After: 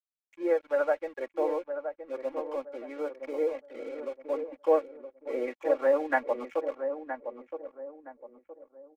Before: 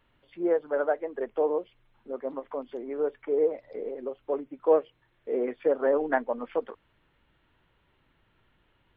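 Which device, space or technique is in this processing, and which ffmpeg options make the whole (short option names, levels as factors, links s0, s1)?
pocket radio on a weak battery: -filter_complex "[0:a]highpass=150,highpass=360,lowpass=3000,aeval=exprs='sgn(val(0))*max(abs(val(0))-0.00266,0)':c=same,equalizer=f=2300:t=o:w=0.4:g=9,aecho=1:1:3.6:0.78,asplit=2[s0][s1];[s1]adelay=968,lowpass=f=980:p=1,volume=0.447,asplit=2[s2][s3];[s3]adelay=968,lowpass=f=980:p=1,volume=0.38,asplit=2[s4][s5];[s5]adelay=968,lowpass=f=980:p=1,volume=0.38,asplit=2[s6][s7];[s7]adelay=968,lowpass=f=980:p=1,volume=0.38[s8];[s0][s2][s4][s6][s8]amix=inputs=5:normalize=0,volume=0.794"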